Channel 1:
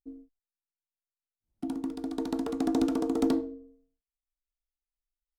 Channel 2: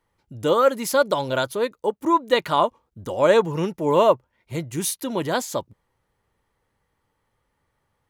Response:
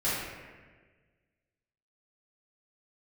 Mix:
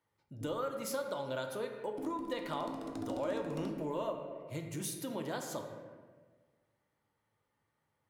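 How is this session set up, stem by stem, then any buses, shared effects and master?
−5.0 dB, 0.35 s, send −10.5 dB, downward compressor 2 to 1, threshold −40 dBFS, peak gain reduction 10.5 dB
−10.5 dB, 0.00 s, send −12.5 dB, downward compressor 2.5 to 1, threshold −25 dBFS, peak gain reduction 9.5 dB; high-pass filter 87 Hz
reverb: on, RT60 1.4 s, pre-delay 3 ms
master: downward compressor 1.5 to 1, threshold −40 dBFS, peak gain reduction 5 dB

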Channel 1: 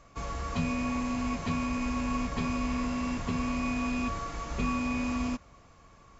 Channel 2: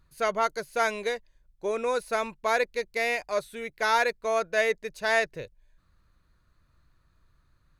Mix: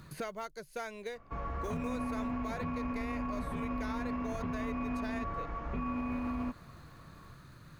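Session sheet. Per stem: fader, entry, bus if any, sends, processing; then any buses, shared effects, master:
−1.5 dB, 1.15 s, no send, Chebyshev low-pass filter 1,500 Hz, order 2
−15.0 dB, 0.00 s, no send, floating-point word with a short mantissa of 4 bits; low-shelf EQ 210 Hz +11 dB; multiband upward and downward compressor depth 100%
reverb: not used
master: brickwall limiter −28 dBFS, peak gain reduction 6.5 dB

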